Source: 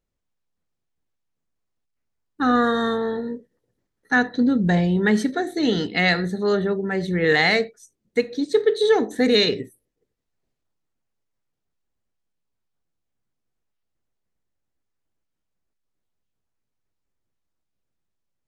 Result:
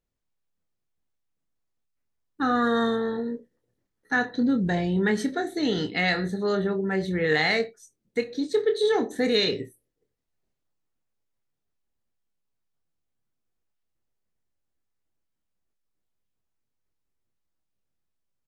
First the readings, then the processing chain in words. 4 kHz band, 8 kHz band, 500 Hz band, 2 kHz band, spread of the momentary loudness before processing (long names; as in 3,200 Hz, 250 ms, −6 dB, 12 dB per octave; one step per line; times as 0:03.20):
−4.5 dB, −3.5 dB, −4.0 dB, −4.5 dB, 9 LU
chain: in parallel at −2 dB: brickwall limiter −14.5 dBFS, peak gain reduction 8 dB
on the sum: double-tracking delay 26 ms −8 dB
level −8.5 dB